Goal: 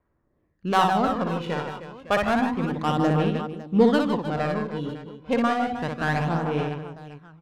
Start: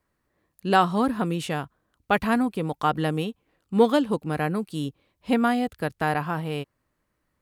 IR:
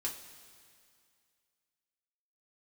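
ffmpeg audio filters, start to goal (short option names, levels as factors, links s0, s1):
-filter_complex "[0:a]aresample=16000,aresample=44100,adynamicsmooth=sensitivity=2.5:basefreq=1800,aecho=1:1:60|156|309.6|555.4|948.6:0.631|0.398|0.251|0.158|0.1,asplit=2[s0][s1];[1:a]atrim=start_sample=2205,asetrate=38808,aresample=44100,adelay=115[s2];[s1][s2]afir=irnorm=-1:irlink=0,volume=0.0891[s3];[s0][s3]amix=inputs=2:normalize=0,aphaser=in_gain=1:out_gain=1:delay=2.1:decay=0.45:speed=0.3:type=sinusoidal,volume=0.841"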